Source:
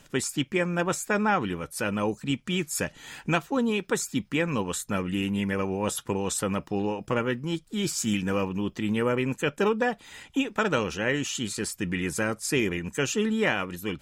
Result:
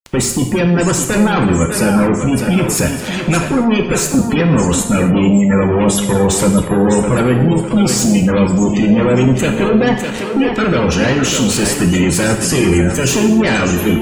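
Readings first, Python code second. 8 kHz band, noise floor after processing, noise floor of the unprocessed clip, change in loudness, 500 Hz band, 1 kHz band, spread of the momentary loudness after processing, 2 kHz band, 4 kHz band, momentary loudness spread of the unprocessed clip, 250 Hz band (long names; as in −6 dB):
+15.0 dB, −22 dBFS, −57 dBFS, +14.5 dB, +13.0 dB, +11.0 dB, 3 LU, +9.5 dB, +11.5 dB, 5 LU, +16.5 dB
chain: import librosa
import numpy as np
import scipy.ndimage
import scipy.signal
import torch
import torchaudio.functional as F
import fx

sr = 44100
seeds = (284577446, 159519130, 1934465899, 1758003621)

p1 = fx.fuzz(x, sr, gain_db=44.0, gate_db=-41.0)
p2 = fx.low_shelf(p1, sr, hz=290.0, db=7.5)
p3 = p2 + fx.echo_thinned(p2, sr, ms=604, feedback_pct=49, hz=210.0, wet_db=-6.0, dry=0)
p4 = fx.spec_gate(p3, sr, threshold_db=-25, keep='strong')
p5 = fx.rev_gated(p4, sr, seeds[0], gate_ms=300, shape='falling', drr_db=4.0)
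y = p5 * 10.0 ** (-2.5 / 20.0)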